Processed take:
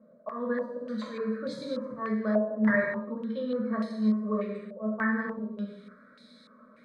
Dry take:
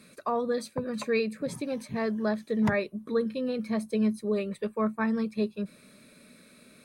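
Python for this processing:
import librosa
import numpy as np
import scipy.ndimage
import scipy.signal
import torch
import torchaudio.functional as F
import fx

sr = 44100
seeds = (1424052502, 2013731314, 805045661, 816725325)

y = fx.low_shelf(x, sr, hz=130.0, db=-9.0)
y = fx.auto_swell(y, sr, attack_ms=153.0)
y = fx.fixed_phaser(y, sr, hz=530.0, stages=8)
y = fx.rev_gated(y, sr, seeds[0], gate_ms=360, shape='falling', drr_db=-3.5)
y = fx.filter_held_lowpass(y, sr, hz=3.4, low_hz=700.0, high_hz=4000.0)
y = F.gain(torch.from_numpy(y), -4.5).numpy()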